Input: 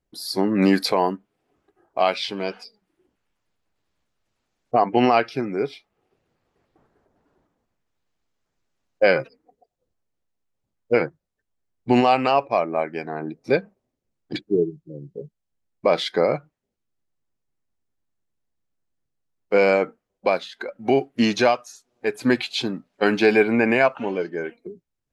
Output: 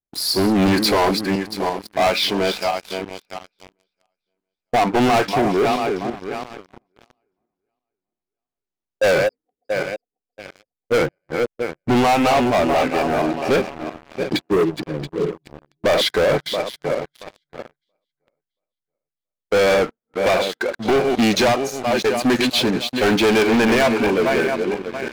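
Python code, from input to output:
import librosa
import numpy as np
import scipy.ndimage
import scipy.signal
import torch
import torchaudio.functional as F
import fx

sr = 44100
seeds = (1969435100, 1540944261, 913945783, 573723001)

y = fx.reverse_delay_fb(x, sr, ms=339, feedback_pct=49, wet_db=-9.5)
y = fx.leveller(y, sr, passes=5)
y = y * 10.0 ** (-8.0 / 20.0)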